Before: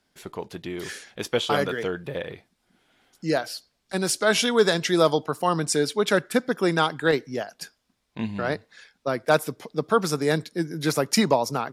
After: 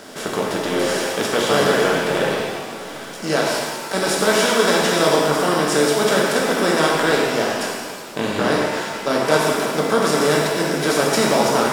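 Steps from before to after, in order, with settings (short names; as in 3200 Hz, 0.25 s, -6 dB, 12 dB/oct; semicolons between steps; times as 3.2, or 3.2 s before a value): per-bin compression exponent 0.4; crossover distortion -41 dBFS; shimmer reverb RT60 1.6 s, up +7 st, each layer -8 dB, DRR -2.5 dB; gain -5 dB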